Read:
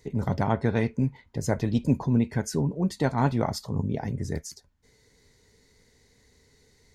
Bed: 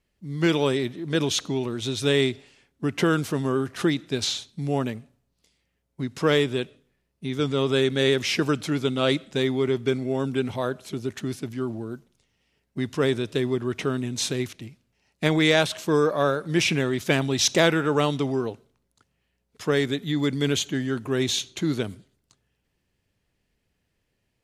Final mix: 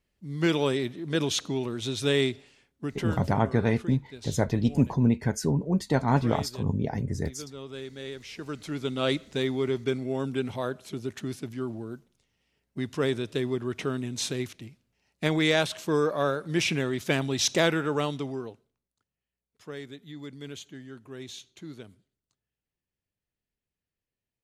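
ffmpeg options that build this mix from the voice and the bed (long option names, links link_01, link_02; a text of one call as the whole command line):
ffmpeg -i stem1.wav -i stem2.wav -filter_complex "[0:a]adelay=2900,volume=0.5dB[link_01];[1:a]volume=10.5dB,afade=type=out:start_time=2.59:duration=0.61:silence=0.188365,afade=type=in:start_time=8.36:duration=0.7:silence=0.211349,afade=type=out:start_time=17.74:duration=1.15:silence=0.223872[link_02];[link_01][link_02]amix=inputs=2:normalize=0" out.wav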